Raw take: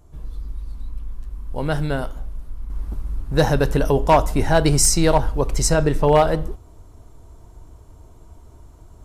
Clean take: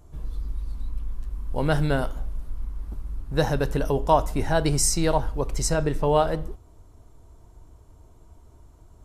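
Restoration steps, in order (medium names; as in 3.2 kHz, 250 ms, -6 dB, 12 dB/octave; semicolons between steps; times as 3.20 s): clip repair -7 dBFS; gain correction -6 dB, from 2.70 s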